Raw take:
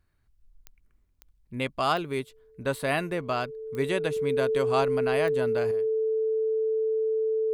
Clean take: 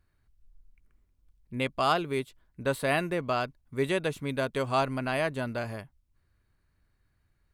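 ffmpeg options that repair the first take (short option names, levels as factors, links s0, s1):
-af "adeclick=t=4,bandreject=f=440:w=30,asetnsamples=n=441:p=0,asendcmd='5.71 volume volume 10dB',volume=1"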